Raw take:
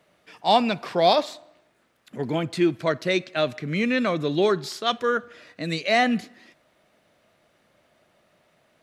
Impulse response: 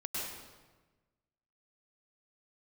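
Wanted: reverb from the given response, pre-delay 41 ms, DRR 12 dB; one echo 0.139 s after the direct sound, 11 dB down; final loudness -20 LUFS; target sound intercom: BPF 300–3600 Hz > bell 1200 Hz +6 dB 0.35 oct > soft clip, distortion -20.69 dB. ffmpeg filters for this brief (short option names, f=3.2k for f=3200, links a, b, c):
-filter_complex "[0:a]aecho=1:1:139:0.282,asplit=2[a][b];[1:a]atrim=start_sample=2205,adelay=41[c];[b][c]afir=irnorm=-1:irlink=0,volume=-15dB[d];[a][d]amix=inputs=2:normalize=0,highpass=300,lowpass=3.6k,equalizer=f=1.2k:t=o:w=0.35:g=6,asoftclip=threshold=-10dB,volume=4.5dB"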